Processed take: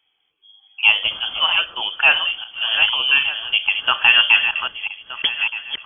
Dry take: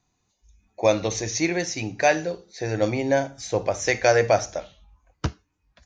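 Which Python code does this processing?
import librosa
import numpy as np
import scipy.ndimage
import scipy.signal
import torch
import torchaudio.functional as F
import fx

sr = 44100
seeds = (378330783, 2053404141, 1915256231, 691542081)

y = fx.reverse_delay_fb(x, sr, ms=611, feedback_pct=41, wet_db=-7.5)
y = fx.freq_invert(y, sr, carrier_hz=3300)
y = y * 10.0 ** (4.5 / 20.0)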